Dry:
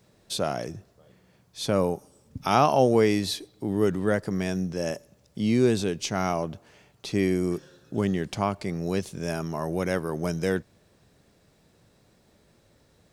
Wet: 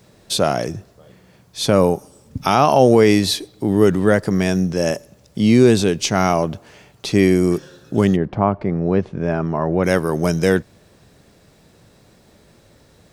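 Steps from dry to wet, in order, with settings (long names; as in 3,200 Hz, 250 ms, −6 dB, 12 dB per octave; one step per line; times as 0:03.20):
0:08.15–0:09.83: low-pass filter 1,100 Hz → 2,000 Hz 12 dB per octave
boost into a limiter +11 dB
level −1 dB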